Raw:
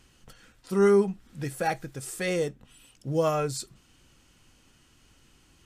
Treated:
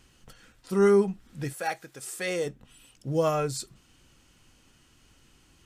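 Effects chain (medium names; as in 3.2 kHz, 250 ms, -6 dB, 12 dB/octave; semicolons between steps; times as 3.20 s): 1.52–2.45 s: high-pass 930 Hz -> 330 Hz 6 dB/octave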